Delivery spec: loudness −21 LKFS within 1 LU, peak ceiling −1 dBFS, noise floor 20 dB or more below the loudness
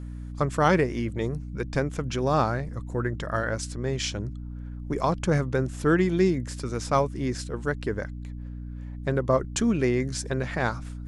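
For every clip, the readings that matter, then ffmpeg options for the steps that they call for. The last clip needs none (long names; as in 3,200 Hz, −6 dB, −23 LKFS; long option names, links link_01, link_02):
mains hum 60 Hz; hum harmonics up to 300 Hz; level of the hum −34 dBFS; integrated loudness −27.0 LKFS; sample peak −8.5 dBFS; target loudness −21.0 LKFS
→ -af "bandreject=frequency=60:width_type=h:width=4,bandreject=frequency=120:width_type=h:width=4,bandreject=frequency=180:width_type=h:width=4,bandreject=frequency=240:width_type=h:width=4,bandreject=frequency=300:width_type=h:width=4"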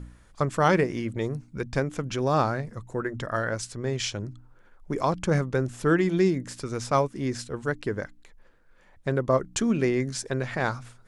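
mains hum none found; integrated loudness −27.5 LKFS; sample peak −9.0 dBFS; target loudness −21.0 LKFS
→ -af "volume=6.5dB"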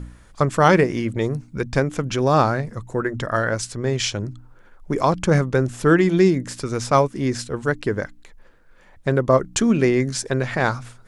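integrated loudness −21.0 LKFS; sample peak −2.5 dBFS; background noise floor −49 dBFS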